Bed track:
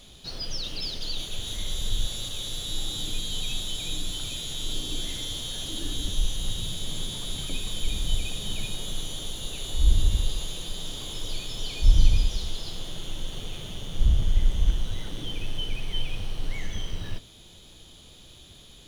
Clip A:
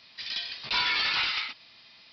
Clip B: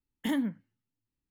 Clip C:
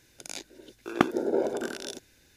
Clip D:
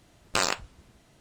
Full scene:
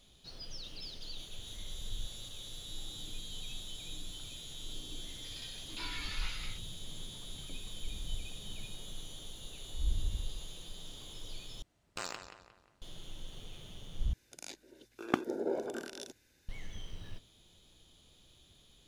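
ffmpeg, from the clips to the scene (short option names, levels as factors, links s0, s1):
-filter_complex "[0:a]volume=0.224[s0];[4:a]asplit=2[s1][s2];[s2]adelay=178,lowpass=f=4000:p=1,volume=0.376,asplit=2[s3][s4];[s4]adelay=178,lowpass=f=4000:p=1,volume=0.42,asplit=2[s5][s6];[s6]adelay=178,lowpass=f=4000:p=1,volume=0.42,asplit=2[s7][s8];[s8]adelay=178,lowpass=f=4000:p=1,volume=0.42,asplit=2[s9][s10];[s10]adelay=178,lowpass=f=4000:p=1,volume=0.42[s11];[s1][s3][s5][s7][s9][s11]amix=inputs=6:normalize=0[s12];[s0]asplit=3[s13][s14][s15];[s13]atrim=end=11.624[s16];[s12]atrim=end=1.2,asetpts=PTS-STARTPTS,volume=0.168[s17];[s14]atrim=start=12.816:end=14.134[s18];[3:a]atrim=end=2.36,asetpts=PTS-STARTPTS,volume=0.398[s19];[s15]atrim=start=16.486[s20];[1:a]atrim=end=2.12,asetpts=PTS-STARTPTS,volume=0.15,afade=t=in:d=0.004:c=hsin,afade=t=out:st=2.116:d=0.004:c=hsin,adelay=5060[s21];[s16][s17]acrossfade=d=0.004:c1=hsin:c2=hsin[s22];[s22][s18]acrossfade=d=0.004:c1=hsin:c2=hsin[s23];[s23][s19]acrossfade=d=0.004:c1=hsin:c2=hsin[s24];[s24][s20]acrossfade=d=0.004:c1=hsin:c2=hsin[s25];[s25][s21]amix=inputs=2:normalize=0"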